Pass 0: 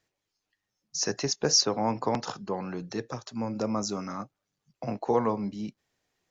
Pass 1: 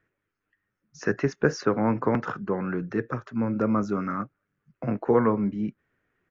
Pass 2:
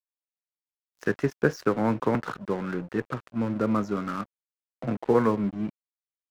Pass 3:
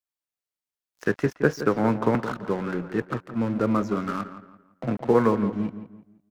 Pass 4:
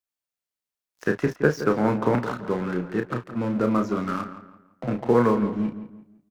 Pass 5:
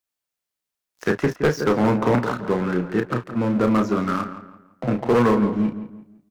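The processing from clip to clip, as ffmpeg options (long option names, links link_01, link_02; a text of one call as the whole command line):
ffmpeg -i in.wav -af "firequalizer=gain_entry='entry(380,0);entry(790,-10);entry(1400,5);entry(4200,-24)':delay=0.05:min_phase=1,volume=6.5dB" out.wav
ffmpeg -i in.wav -af "aeval=exprs='sgn(val(0))*max(abs(val(0))-0.01,0)':channel_layout=same" out.wav
ffmpeg -i in.wav -filter_complex "[0:a]asplit=2[link_01][link_02];[link_02]adelay=169,lowpass=frequency=2600:poles=1,volume=-11.5dB,asplit=2[link_03][link_04];[link_04]adelay=169,lowpass=frequency=2600:poles=1,volume=0.36,asplit=2[link_05][link_06];[link_06]adelay=169,lowpass=frequency=2600:poles=1,volume=0.36,asplit=2[link_07][link_08];[link_08]adelay=169,lowpass=frequency=2600:poles=1,volume=0.36[link_09];[link_01][link_03][link_05][link_07][link_09]amix=inputs=5:normalize=0,volume=2dB" out.wav
ffmpeg -i in.wav -filter_complex "[0:a]asplit=2[link_01][link_02];[link_02]adelay=33,volume=-7dB[link_03];[link_01][link_03]amix=inputs=2:normalize=0" out.wav
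ffmpeg -i in.wav -af "asoftclip=type=hard:threshold=-17dB,volume=4.5dB" out.wav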